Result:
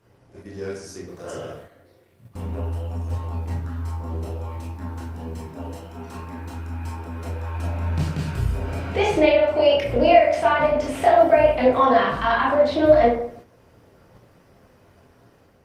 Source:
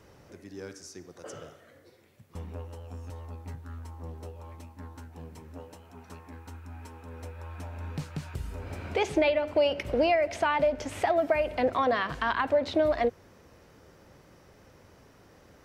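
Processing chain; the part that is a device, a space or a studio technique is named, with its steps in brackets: speakerphone in a meeting room (reverb RT60 0.65 s, pre-delay 19 ms, DRR -5 dB; AGC gain up to 5 dB; gate -40 dBFS, range -7 dB; gain -1 dB; Opus 32 kbps 48000 Hz)

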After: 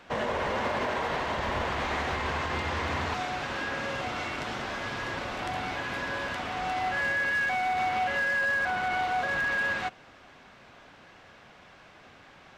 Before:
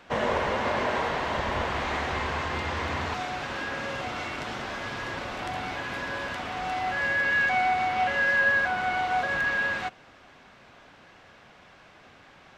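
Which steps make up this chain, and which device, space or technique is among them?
limiter into clipper (limiter -20.5 dBFS, peak gain reduction 6.5 dB; hard clip -23 dBFS, distortion -25 dB)

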